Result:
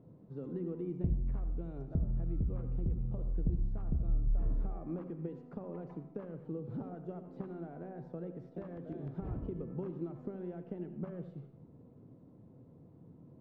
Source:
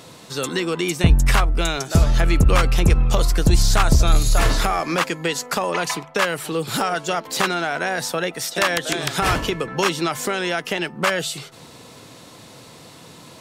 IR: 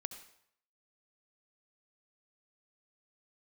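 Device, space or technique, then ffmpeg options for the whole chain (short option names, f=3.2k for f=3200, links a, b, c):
television next door: -filter_complex "[0:a]acompressor=threshold=-21dB:ratio=4,lowpass=300[a];[1:a]atrim=start_sample=2205[b];[a][b]afir=irnorm=-1:irlink=0,volume=-6dB"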